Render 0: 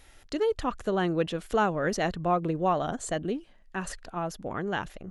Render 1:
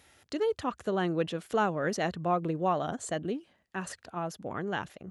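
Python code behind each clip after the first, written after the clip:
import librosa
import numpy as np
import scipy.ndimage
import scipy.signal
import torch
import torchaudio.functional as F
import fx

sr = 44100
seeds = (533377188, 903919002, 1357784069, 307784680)

y = scipy.signal.sosfilt(scipy.signal.butter(4, 76.0, 'highpass', fs=sr, output='sos'), x)
y = y * 10.0 ** (-2.5 / 20.0)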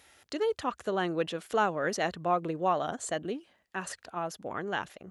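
y = fx.peak_eq(x, sr, hz=120.0, db=-8.0, octaves=2.7)
y = y * 10.0 ** (2.0 / 20.0)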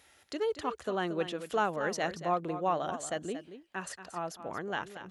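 y = x + 10.0 ** (-11.5 / 20.0) * np.pad(x, (int(230 * sr / 1000.0), 0))[:len(x)]
y = y * 10.0 ** (-2.5 / 20.0)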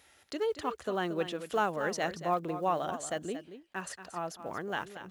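y = fx.block_float(x, sr, bits=7)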